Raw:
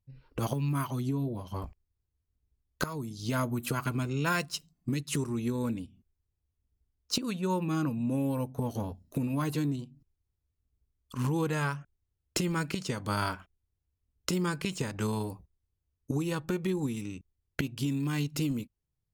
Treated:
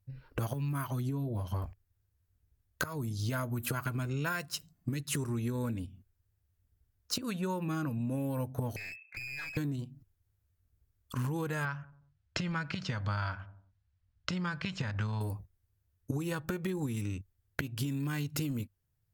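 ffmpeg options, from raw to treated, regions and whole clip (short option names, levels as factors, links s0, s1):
-filter_complex "[0:a]asettb=1/sr,asplit=3[s0][s1][s2];[s0]atrim=end=8.764[s3];[s1]atrim=start=8.76:end=9.57,asetpts=PTS-STARTPTS,afade=t=in:d=0.004:c=qsin,afade=t=out:st=0.806:d=0.004:c=qsin,lowpass=f=2300:t=q:w=0.5098,lowpass=f=2300:t=q:w=0.6013,lowpass=f=2300:t=q:w=0.9,lowpass=f=2300:t=q:w=2.563,afreqshift=-2700,acompressor=threshold=0.00891:ratio=4:attack=3.2:release=140:knee=1:detection=peak,aeval=exprs='clip(val(0),-1,0.00398)':c=same[s4];[s2]atrim=start=9.566[s5];[s3][s4]acrossfade=d=0.004:c1=hsin:c2=qsin[s6];[s6][s5]acrossfade=d=0.004:c1=qsin:c2=hsin,asettb=1/sr,asplit=3[s7][s8][s9];[s7]atrim=end=11.654[s10];[s8]atrim=start=11.65:end=15.21,asetpts=PTS-STARTPTS,afade=t=in:d=0.004:c=qsin,afade=t=out:st=3.556:d=0.004:c=qsin,lowpass=f=5100:w=0.5412,lowpass=f=5100:w=1.3066,equalizer=f=380:w=1.7:g=-11,asplit=2[s11][s12];[s12]adelay=90,lowpass=f=900:p=1,volume=0.1,asplit=2[s13][s14];[s14]adelay=90,lowpass=f=900:p=1,volume=0.51,asplit=2[s15][s16];[s16]adelay=90,lowpass=f=900:p=1,volume=0.51,asplit=2[s17][s18];[s18]adelay=90,lowpass=f=900:p=1,volume=0.51[s19];[s11][s13][s15][s17][s19]amix=inputs=5:normalize=0,atrim=end_sample=156996[s20];[s9]atrim=start=15.206[s21];[s10][s20]acrossfade=d=0.004:c1=hsin:c2=qsin[s22];[s22][s21]acrossfade=d=0.004:c1=qsin:c2=hsin,equalizer=f=100:t=o:w=0.67:g=10,equalizer=f=630:t=o:w=0.67:g=4,equalizer=f=1600:t=o:w=0.67:g=7,equalizer=f=16000:t=o:w=0.67:g=10,acompressor=threshold=0.0251:ratio=6,volume=1.12"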